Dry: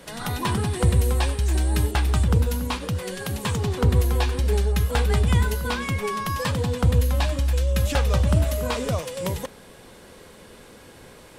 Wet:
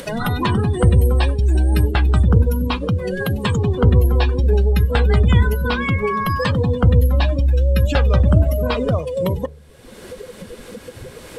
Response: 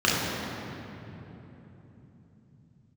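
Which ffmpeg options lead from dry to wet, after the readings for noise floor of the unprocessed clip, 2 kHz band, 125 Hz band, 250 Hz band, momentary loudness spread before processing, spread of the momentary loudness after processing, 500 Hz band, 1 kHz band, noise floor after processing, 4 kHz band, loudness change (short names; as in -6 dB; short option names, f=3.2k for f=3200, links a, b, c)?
-47 dBFS, +5.0 dB, +6.5 dB, +7.0 dB, 8 LU, 19 LU, +6.5 dB, +4.5 dB, -40 dBFS, +2.0 dB, +6.0 dB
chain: -af "afftdn=nr=24:nf=-31,equalizer=f=860:t=o:w=0.62:g=-4,bandreject=f=73.28:t=h:w=4,bandreject=f=146.56:t=h:w=4,acompressor=mode=upward:threshold=-21dB:ratio=2.5,volume=6.5dB"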